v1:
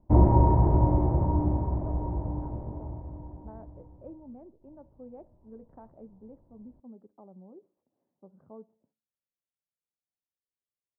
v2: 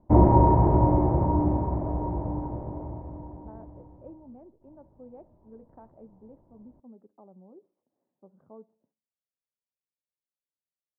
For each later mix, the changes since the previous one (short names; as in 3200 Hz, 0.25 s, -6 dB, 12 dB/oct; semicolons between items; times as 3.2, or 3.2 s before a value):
background +5.5 dB; master: add low shelf 120 Hz -8.5 dB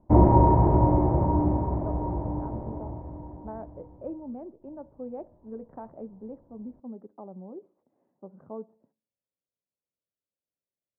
speech +9.5 dB